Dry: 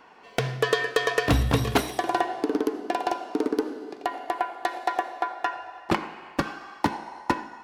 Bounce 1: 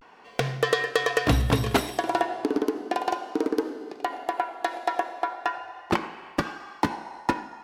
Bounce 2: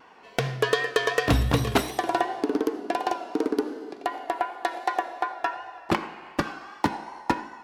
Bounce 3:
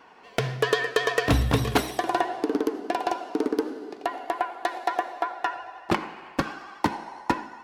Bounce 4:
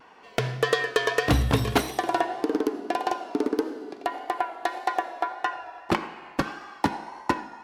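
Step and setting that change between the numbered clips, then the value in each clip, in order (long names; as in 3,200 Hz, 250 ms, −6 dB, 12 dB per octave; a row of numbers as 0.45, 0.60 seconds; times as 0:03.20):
pitch vibrato, speed: 0.36, 2.7, 12, 1.7 Hertz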